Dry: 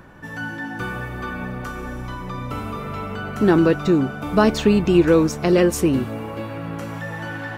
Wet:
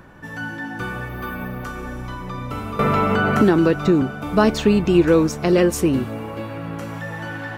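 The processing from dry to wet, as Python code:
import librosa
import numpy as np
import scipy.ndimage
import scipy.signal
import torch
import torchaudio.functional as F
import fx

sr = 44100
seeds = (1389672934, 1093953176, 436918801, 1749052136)

y = fx.resample_bad(x, sr, factor=3, down='filtered', up='hold', at=(1.09, 1.64))
y = fx.band_squash(y, sr, depth_pct=100, at=(2.79, 4.02))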